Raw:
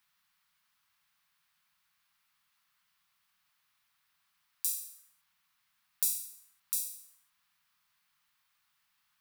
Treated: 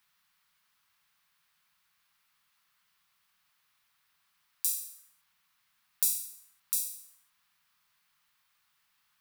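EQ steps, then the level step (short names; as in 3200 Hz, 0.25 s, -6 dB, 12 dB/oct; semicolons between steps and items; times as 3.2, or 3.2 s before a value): bell 430 Hz +7.5 dB 0.26 oct; +2.5 dB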